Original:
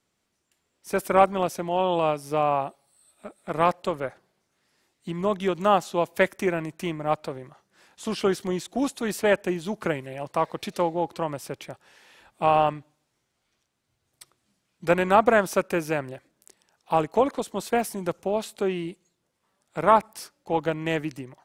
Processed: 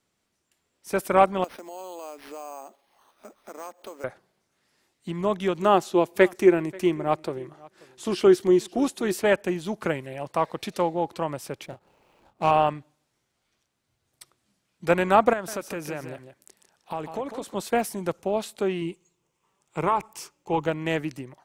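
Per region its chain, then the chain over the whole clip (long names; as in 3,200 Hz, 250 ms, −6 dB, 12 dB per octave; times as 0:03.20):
0:01.44–0:04.04: elliptic high-pass filter 220 Hz + downward compressor 3 to 1, threshold −40 dBFS + bad sample-rate conversion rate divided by 6×, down none, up hold
0:05.62–0:09.22: parametric band 360 Hz +11.5 dB 0.28 octaves + single-tap delay 535 ms −23.5 dB
0:11.66–0:12.51: running median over 25 samples + double-tracking delay 31 ms −8 dB
0:15.33–0:17.55: downward compressor 2.5 to 1, threshold −31 dBFS + single-tap delay 150 ms −9 dB
0:18.81–0:20.67: EQ curve with evenly spaced ripples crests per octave 0.72, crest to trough 8 dB + downward compressor, threshold −17 dBFS
whole clip: no processing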